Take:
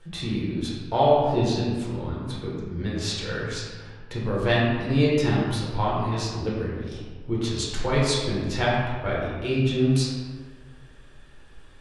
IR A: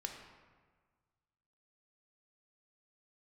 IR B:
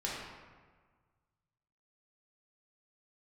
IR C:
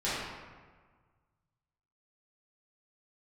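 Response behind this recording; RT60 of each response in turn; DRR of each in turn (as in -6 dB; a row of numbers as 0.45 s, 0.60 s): B; 1.5 s, 1.5 s, 1.5 s; 2.5 dB, -6.0 dB, -12.0 dB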